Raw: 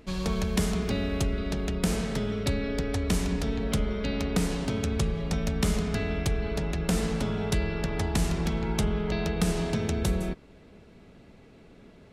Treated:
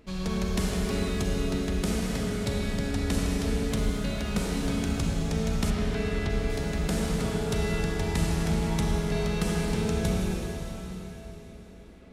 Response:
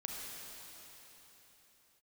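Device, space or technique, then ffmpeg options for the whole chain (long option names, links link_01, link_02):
cathedral: -filter_complex "[1:a]atrim=start_sample=2205[link_01];[0:a][link_01]afir=irnorm=-1:irlink=0,asettb=1/sr,asplit=3[link_02][link_03][link_04];[link_02]atrim=end=5.704[link_05];[link_03]atrim=start=5.7:end=6.5,asetpts=PTS-STARTPTS,afade=type=in:duration=0.004:curve=qsin,afade=type=out:start_time=0.796:duration=0.004:curve=qsin,acrossover=split=4700[link_06][link_07];[link_07]acompressor=threshold=-53dB:ratio=4:attack=1:release=60[link_08];[link_06][link_08]amix=inputs=2:normalize=0[link_09];[link_04]atrim=start=6.496[link_10];[link_05][link_09]acrossfade=duration=0.004:curve1=hsin:curve2=qsin[link_11];[link_11][link_10]acrossfade=duration=0.004:curve1=qsin:curve2=hsin"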